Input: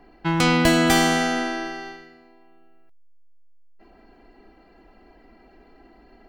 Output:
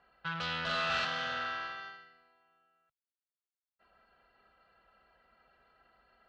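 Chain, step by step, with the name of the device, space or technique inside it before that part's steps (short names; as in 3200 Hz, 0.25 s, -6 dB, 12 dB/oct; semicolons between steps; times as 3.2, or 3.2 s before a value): scooped metal amplifier (tube stage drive 26 dB, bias 0.75; speaker cabinet 94–3700 Hz, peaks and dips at 140 Hz +6 dB, 240 Hz +3 dB, 540 Hz +9 dB, 790 Hz -3 dB, 1400 Hz +6 dB, 2200 Hz -9 dB; passive tone stack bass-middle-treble 10-0-10); bell 1300 Hz +4 dB 0.22 oct; 0.62–1.05 flutter echo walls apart 7.5 m, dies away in 1.3 s; gain +2 dB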